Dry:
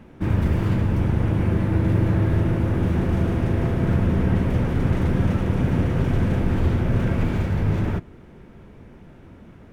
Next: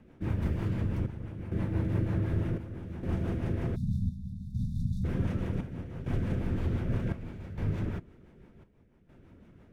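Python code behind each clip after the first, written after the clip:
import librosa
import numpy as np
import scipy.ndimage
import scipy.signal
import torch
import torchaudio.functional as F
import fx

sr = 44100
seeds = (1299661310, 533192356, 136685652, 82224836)

y = fx.chopper(x, sr, hz=0.66, depth_pct=65, duty_pct=70)
y = fx.rotary(y, sr, hz=6.0)
y = fx.spec_erase(y, sr, start_s=3.76, length_s=1.28, low_hz=250.0, high_hz=3500.0)
y = y * librosa.db_to_amplitude(-8.5)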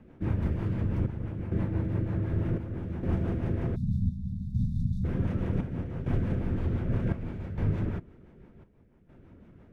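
y = fx.high_shelf(x, sr, hz=3200.0, db=-9.5)
y = fx.rider(y, sr, range_db=4, speed_s=0.5)
y = y * librosa.db_to_amplitude(2.5)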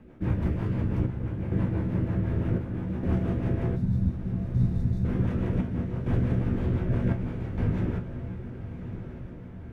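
y = fx.comb_fb(x, sr, f0_hz=61.0, decay_s=0.2, harmonics='all', damping=0.0, mix_pct=80)
y = fx.echo_diffused(y, sr, ms=1188, feedback_pct=53, wet_db=-10.5)
y = y * librosa.db_to_amplitude(7.0)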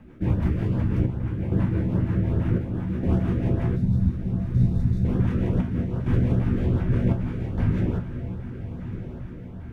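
y = fx.filter_lfo_notch(x, sr, shape='saw_up', hz=2.5, low_hz=350.0, high_hz=2600.0, q=1.7)
y = y * librosa.db_to_amplitude(4.0)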